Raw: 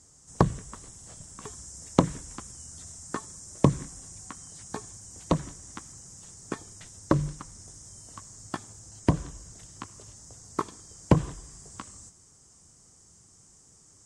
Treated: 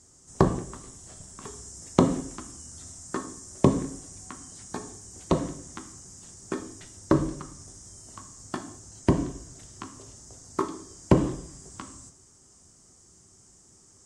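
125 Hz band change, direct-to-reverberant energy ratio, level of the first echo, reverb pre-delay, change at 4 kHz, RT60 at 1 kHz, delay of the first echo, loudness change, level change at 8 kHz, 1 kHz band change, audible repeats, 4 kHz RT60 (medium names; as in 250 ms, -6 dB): -0.5 dB, 5.0 dB, no echo, 3 ms, +0.5 dB, 0.55 s, no echo, +2.5 dB, +0.5 dB, +1.0 dB, no echo, 0.65 s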